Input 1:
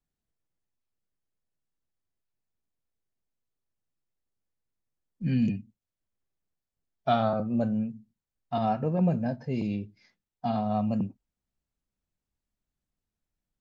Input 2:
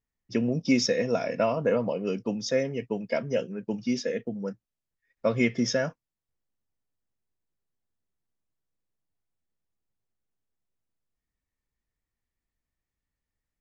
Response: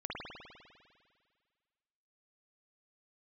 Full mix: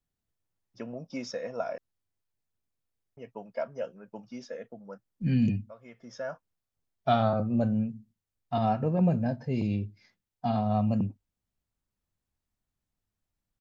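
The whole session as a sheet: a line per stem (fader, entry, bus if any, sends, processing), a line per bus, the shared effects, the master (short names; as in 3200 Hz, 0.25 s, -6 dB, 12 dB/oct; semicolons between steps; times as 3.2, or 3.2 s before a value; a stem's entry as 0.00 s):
0.0 dB, 0.00 s, no send, bell 100 Hz +7 dB 0.38 oct
-14.5 dB, 0.45 s, muted 1.78–3.17, no send, band shelf 920 Hz +12 dB; auto duck -18 dB, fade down 0.25 s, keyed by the first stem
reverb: off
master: dry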